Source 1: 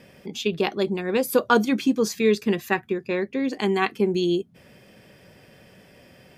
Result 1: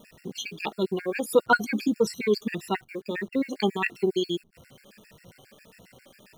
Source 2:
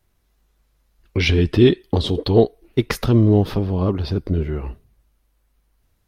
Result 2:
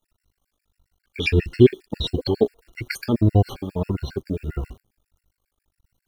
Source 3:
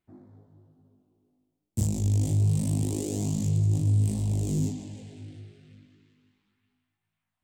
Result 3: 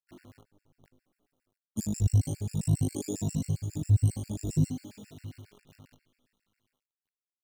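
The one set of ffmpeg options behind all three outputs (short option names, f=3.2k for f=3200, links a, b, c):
-af "afftfilt=real='re*pow(10,16/40*sin(2*PI*(2*log(max(b,1)*sr/1024/100)/log(2)-(1.6)*(pts-256)/sr)))':imag='im*pow(10,16/40*sin(2*PI*(2*log(max(b,1)*sr/1024/100)/log(2)-(1.6)*(pts-256)/sr)))':win_size=1024:overlap=0.75,acrusher=bits=9:dc=4:mix=0:aa=0.000001,afftfilt=real='re*gt(sin(2*PI*7.4*pts/sr)*(1-2*mod(floor(b*sr/1024/1400),2)),0)':imag='im*gt(sin(2*PI*7.4*pts/sr)*(1-2*mod(floor(b*sr/1024/1400),2)),0)':win_size=1024:overlap=0.75,volume=-3dB"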